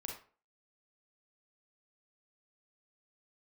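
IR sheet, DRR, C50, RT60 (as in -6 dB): 0.0 dB, 4.0 dB, 0.40 s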